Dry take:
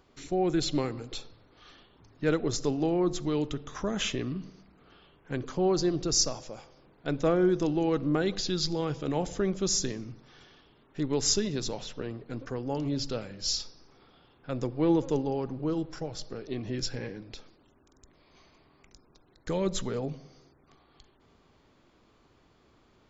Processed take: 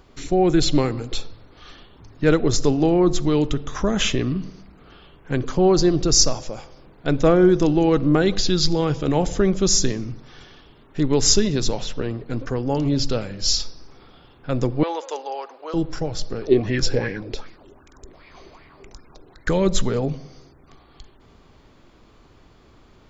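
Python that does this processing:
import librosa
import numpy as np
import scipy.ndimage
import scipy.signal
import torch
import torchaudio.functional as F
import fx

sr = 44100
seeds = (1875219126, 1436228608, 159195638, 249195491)

y = fx.highpass(x, sr, hz=610.0, slope=24, at=(14.83, 15.74))
y = fx.bell_lfo(y, sr, hz=2.6, low_hz=370.0, high_hz=2200.0, db=13, at=(16.41, 19.49), fade=0.02)
y = fx.low_shelf(y, sr, hz=72.0, db=9.5)
y = F.gain(torch.from_numpy(y), 9.0).numpy()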